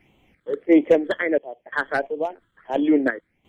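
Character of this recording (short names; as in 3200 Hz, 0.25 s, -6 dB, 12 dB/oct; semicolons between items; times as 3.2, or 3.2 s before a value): phasing stages 8, 1.5 Hz, lowest notch 730–1600 Hz; random-step tremolo 2.9 Hz, depth 90%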